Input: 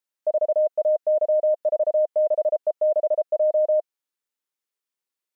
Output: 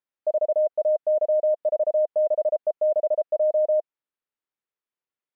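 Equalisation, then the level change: distance through air 340 m; 0.0 dB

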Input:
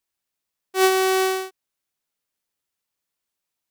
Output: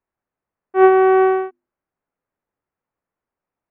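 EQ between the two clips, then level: Gaussian low-pass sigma 5.3 samples; hum notches 50/100/150/200/250/300/350 Hz; +8.5 dB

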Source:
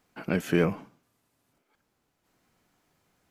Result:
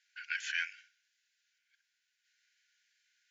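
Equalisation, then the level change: brick-wall FIR band-pass 1.4–7.4 kHz; distance through air 70 m; treble shelf 4.3 kHz +8.5 dB; 0.0 dB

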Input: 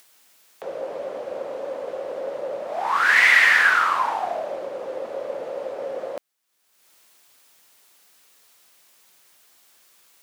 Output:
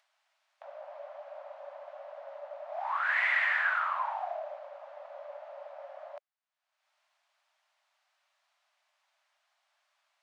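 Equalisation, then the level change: dynamic bell 5.4 kHz, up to -7 dB, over -43 dBFS, Q 1.8; brick-wall FIR high-pass 560 Hz; tape spacing loss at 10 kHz 26 dB; -7.5 dB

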